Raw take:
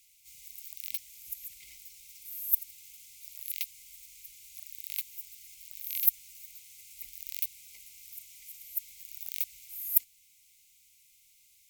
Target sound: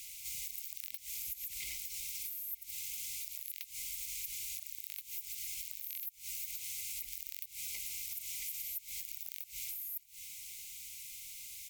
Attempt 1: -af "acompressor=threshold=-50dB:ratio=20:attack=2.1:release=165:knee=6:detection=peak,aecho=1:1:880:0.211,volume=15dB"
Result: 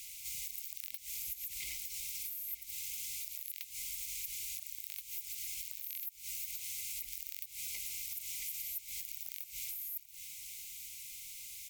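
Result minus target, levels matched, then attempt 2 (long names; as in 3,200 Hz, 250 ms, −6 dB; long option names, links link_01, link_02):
echo-to-direct +8.5 dB
-af "acompressor=threshold=-50dB:ratio=20:attack=2.1:release=165:knee=6:detection=peak,aecho=1:1:880:0.0794,volume=15dB"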